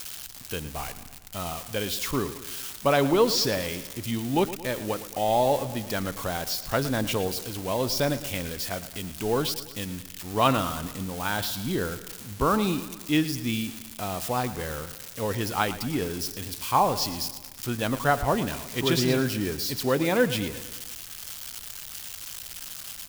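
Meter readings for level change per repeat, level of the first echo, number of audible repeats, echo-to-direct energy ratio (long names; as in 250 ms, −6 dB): −5.0 dB, −14.5 dB, 5, −13.0 dB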